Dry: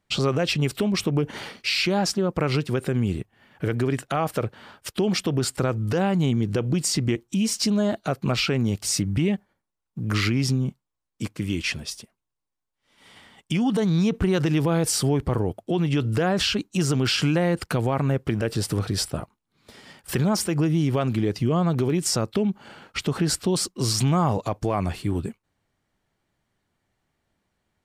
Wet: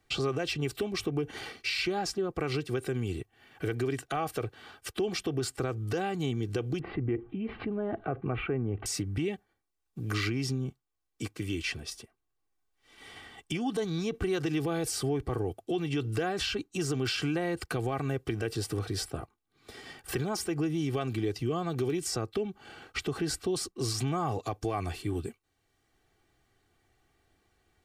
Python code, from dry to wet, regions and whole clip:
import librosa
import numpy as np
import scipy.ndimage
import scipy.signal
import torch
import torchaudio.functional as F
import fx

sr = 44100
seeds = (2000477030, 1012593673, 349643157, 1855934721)

y = fx.chain(x, sr, fx.gaussian_blur(sigma=5.2),
    fx.env_flatten(amount_pct=50), at=(6.79, 8.86))
y = fx.notch(y, sr, hz=960.0, q=7.9)
y = y + 0.57 * np.pad(y, (int(2.6 * sr / 1000.0), 0))[:len(y)]
y = fx.band_squash(y, sr, depth_pct=40)
y = y * librosa.db_to_amplitude(-8.5)